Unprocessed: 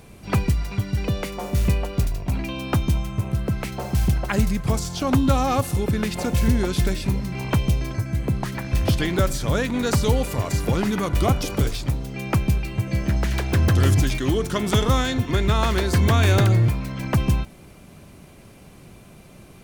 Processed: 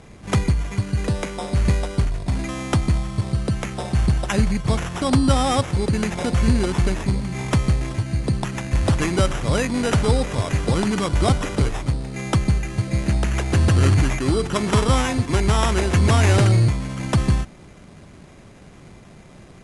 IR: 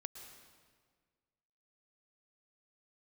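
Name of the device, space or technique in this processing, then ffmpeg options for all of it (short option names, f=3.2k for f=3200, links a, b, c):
crushed at another speed: -af "asetrate=88200,aresample=44100,acrusher=samples=5:mix=1:aa=0.000001,asetrate=22050,aresample=44100,volume=1.5dB"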